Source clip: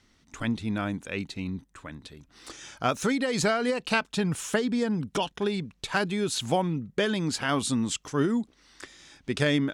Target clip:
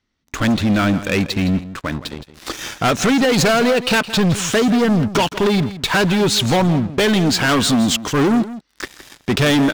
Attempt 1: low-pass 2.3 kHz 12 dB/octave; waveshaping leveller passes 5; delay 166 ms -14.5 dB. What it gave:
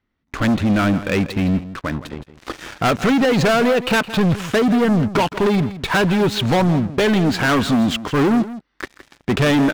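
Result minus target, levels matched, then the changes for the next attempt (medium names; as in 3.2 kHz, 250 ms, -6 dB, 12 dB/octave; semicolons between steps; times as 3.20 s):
8 kHz band -8.5 dB
change: low-pass 5.9 kHz 12 dB/octave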